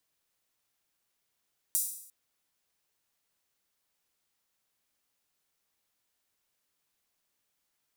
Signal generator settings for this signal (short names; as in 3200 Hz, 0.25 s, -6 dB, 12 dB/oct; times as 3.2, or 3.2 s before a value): open hi-hat length 0.35 s, high-pass 8300 Hz, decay 0.68 s